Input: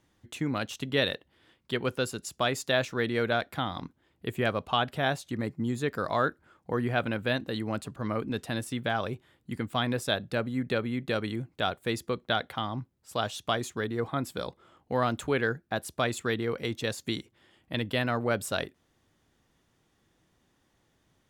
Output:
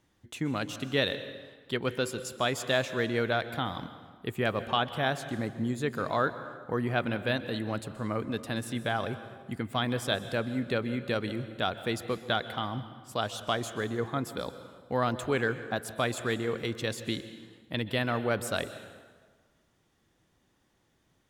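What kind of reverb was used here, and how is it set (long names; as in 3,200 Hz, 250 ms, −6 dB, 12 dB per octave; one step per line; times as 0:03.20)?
dense smooth reverb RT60 1.5 s, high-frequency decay 0.75×, pre-delay 115 ms, DRR 12 dB
level −1 dB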